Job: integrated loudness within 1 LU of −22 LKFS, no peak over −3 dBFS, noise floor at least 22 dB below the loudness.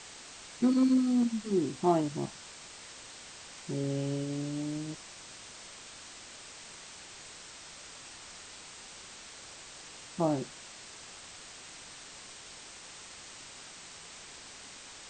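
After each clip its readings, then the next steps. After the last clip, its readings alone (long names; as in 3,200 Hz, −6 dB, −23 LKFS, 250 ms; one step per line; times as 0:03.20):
background noise floor −49 dBFS; target noise floor −55 dBFS; integrated loudness −33.0 LKFS; sample peak −13.0 dBFS; target loudness −22.0 LKFS
→ broadband denoise 6 dB, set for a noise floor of −49 dBFS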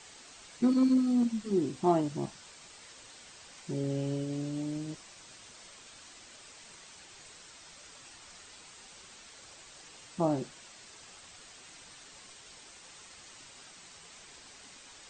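background noise floor −53 dBFS; integrated loudness −31.0 LKFS; sample peak −13.0 dBFS; target loudness −22.0 LKFS
→ level +9 dB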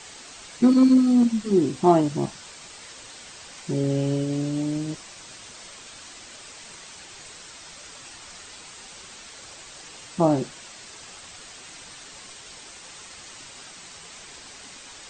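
integrated loudness −22.0 LKFS; sample peak −4.0 dBFS; background noise floor −44 dBFS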